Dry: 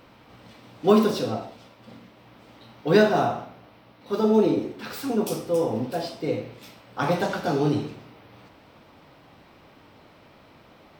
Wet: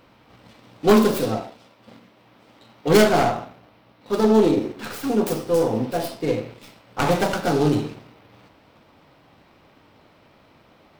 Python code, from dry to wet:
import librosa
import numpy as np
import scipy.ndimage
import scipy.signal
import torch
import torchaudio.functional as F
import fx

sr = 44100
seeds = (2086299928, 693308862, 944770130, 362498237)

y = fx.tracing_dist(x, sr, depth_ms=0.44)
y = fx.low_shelf(y, sr, hz=88.0, db=-10.5, at=(1.4, 2.88))
y = fx.leveller(y, sr, passes=1)